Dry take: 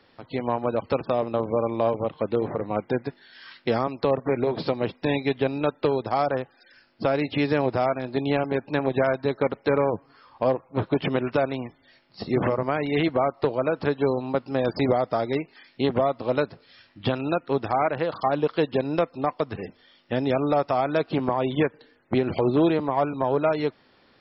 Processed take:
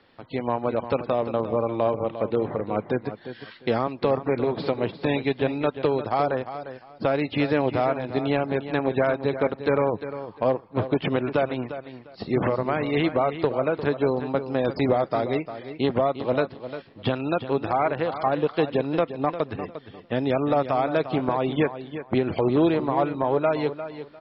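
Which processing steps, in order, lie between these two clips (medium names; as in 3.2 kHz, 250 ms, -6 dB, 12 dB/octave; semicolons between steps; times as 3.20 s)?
low-pass 4.5 kHz 24 dB/octave; feedback delay 351 ms, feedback 21%, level -11.5 dB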